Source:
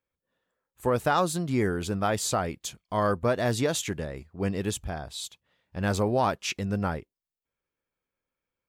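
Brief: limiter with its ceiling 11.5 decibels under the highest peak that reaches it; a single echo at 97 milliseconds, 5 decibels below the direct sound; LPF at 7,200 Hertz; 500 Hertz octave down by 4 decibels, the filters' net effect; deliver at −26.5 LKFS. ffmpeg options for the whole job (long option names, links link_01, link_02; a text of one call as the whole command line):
ffmpeg -i in.wav -af "lowpass=7200,equalizer=frequency=500:width_type=o:gain=-5,alimiter=level_in=1dB:limit=-24dB:level=0:latency=1,volume=-1dB,aecho=1:1:97:0.562,volume=8dB" out.wav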